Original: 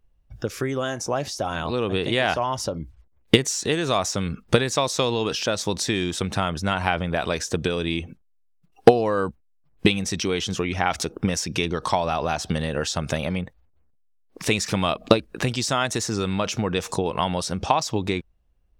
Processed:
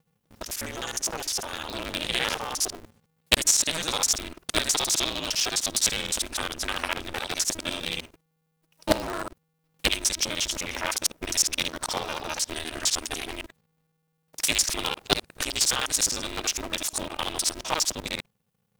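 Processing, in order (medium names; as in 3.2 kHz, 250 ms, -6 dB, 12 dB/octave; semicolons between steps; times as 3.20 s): time reversed locally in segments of 51 ms; pre-emphasis filter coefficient 0.9; polarity switched at an audio rate 160 Hz; trim +8 dB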